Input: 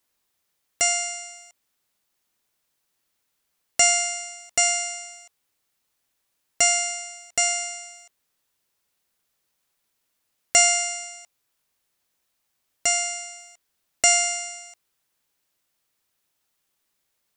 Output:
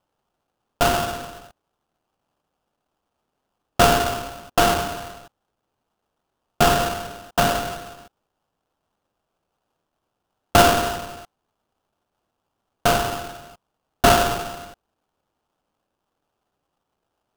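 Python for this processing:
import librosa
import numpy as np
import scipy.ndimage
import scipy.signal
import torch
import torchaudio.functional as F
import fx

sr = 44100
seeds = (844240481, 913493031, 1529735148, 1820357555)

y = scipy.signal.sosfilt(scipy.signal.butter(16, 8600.0, 'lowpass', fs=sr, output='sos'), x)
y = fx.peak_eq(y, sr, hz=760.0, db=12.0, octaves=0.81)
y = fx.sample_hold(y, sr, seeds[0], rate_hz=2100.0, jitter_pct=20)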